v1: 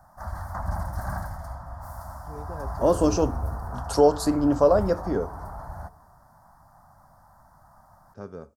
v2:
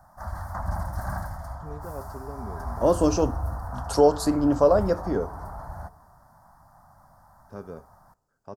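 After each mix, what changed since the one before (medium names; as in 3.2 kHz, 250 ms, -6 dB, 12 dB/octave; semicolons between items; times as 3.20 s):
first voice: entry -0.65 s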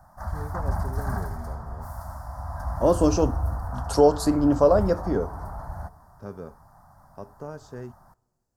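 first voice: entry -1.30 s; master: add bass shelf 230 Hz +3.5 dB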